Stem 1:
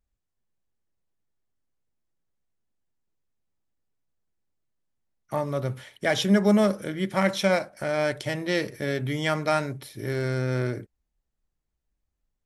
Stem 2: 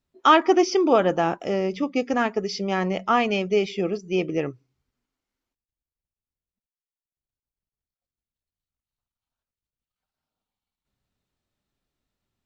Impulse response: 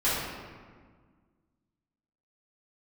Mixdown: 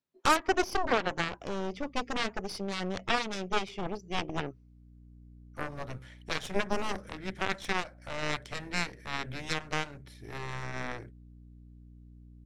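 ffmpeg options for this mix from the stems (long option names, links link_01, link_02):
-filter_complex "[0:a]lowpass=8300,adynamicequalizer=threshold=0.00794:dfrequency=1800:dqfactor=1.6:tfrequency=1800:tqfactor=1.6:attack=5:release=100:ratio=0.375:range=3:mode=boostabove:tftype=bell,aeval=exprs='val(0)+0.01*(sin(2*PI*60*n/s)+sin(2*PI*2*60*n/s)/2+sin(2*PI*3*60*n/s)/3+sin(2*PI*4*60*n/s)/4+sin(2*PI*5*60*n/s)/5)':channel_layout=same,adelay=250,volume=-2.5dB[link_01];[1:a]highpass=150,volume=-0.5dB,asplit=2[link_02][link_03];[link_03]apad=whole_len=560484[link_04];[link_01][link_04]sidechaincompress=threshold=-25dB:ratio=8:attack=11:release=1370[link_05];[link_05][link_02]amix=inputs=2:normalize=0,aeval=exprs='0.631*(cos(1*acos(clip(val(0)/0.631,-1,1)))-cos(1*PI/2))+0.126*(cos(7*acos(clip(val(0)/0.631,-1,1)))-cos(7*PI/2))+0.0562*(cos(8*acos(clip(val(0)/0.631,-1,1)))-cos(8*PI/2))':channel_layout=same,alimiter=limit=-14dB:level=0:latency=1:release=330"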